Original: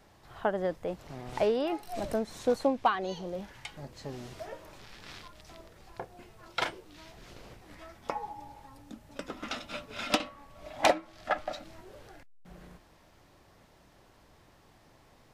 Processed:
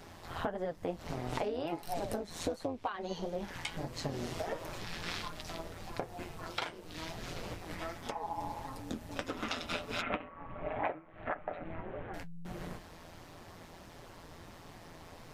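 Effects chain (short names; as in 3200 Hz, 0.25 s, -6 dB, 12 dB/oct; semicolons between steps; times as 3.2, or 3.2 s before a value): 10.01–12.14 inverse Chebyshev low-pass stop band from 4700 Hz, stop band 40 dB; compressor 16:1, threshold -41 dBFS, peak gain reduction 23 dB; AM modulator 170 Hz, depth 60%; flange 1.5 Hz, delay 6.6 ms, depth 6.7 ms, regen -40%; gain +15.5 dB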